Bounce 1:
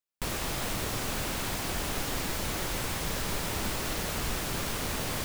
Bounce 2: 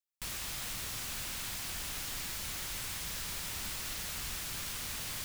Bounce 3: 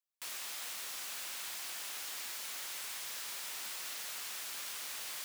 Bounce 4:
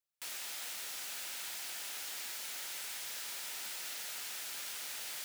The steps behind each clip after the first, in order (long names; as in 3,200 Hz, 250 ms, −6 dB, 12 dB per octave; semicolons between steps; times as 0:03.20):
guitar amp tone stack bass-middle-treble 5-5-5; level +3 dB
high-pass filter 490 Hz 12 dB per octave; level −2.5 dB
notch filter 1,100 Hz, Q 6.9